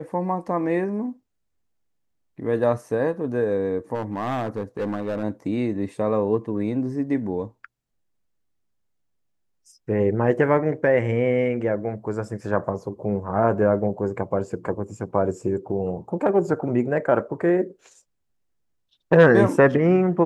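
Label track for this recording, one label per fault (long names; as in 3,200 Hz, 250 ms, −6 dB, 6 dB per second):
3.940000	5.240000	clipping −22 dBFS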